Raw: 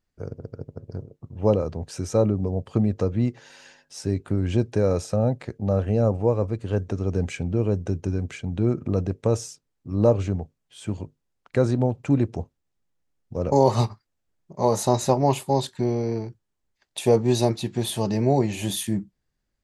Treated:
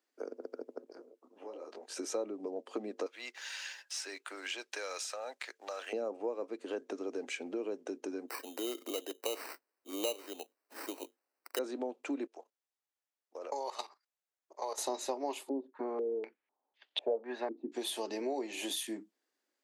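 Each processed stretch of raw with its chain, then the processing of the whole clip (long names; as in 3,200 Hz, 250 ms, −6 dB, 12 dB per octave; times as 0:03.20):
0:00.84–0:01.97: low-shelf EQ 380 Hz −10.5 dB + downward compressor 12 to 1, threshold −35 dBFS + micro pitch shift up and down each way 32 cents
0:03.06–0:05.93: high-pass filter 1,500 Hz + leveller curve on the samples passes 1 + multiband upward and downward compressor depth 40%
0:08.28–0:11.59: high-pass filter 380 Hz + sample-rate reduction 3,400 Hz + high-shelf EQ 8,600 Hz +11 dB
0:12.27–0:14.78: high-pass filter 670 Hz + output level in coarse steps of 14 dB
0:15.49–0:17.72: parametric band 340 Hz −8 dB 0.35 octaves + low-pass on a step sequencer 4 Hz 310–3,200 Hz
whole clip: Butterworth high-pass 270 Hz 48 dB per octave; dynamic equaliser 3,000 Hz, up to +4 dB, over −45 dBFS, Q 0.83; downward compressor 3 to 1, threshold −38 dBFS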